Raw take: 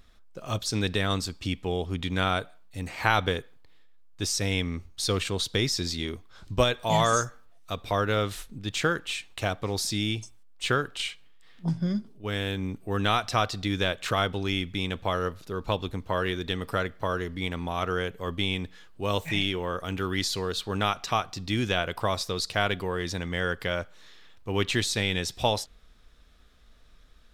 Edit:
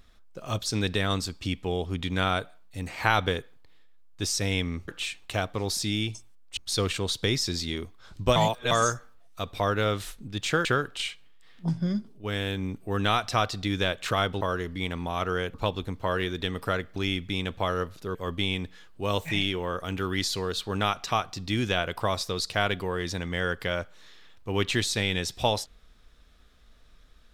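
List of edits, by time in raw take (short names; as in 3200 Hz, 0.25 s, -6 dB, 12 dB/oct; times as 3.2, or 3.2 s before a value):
6.67–7.02 reverse
8.96–10.65 move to 4.88
14.41–15.6 swap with 17.02–18.15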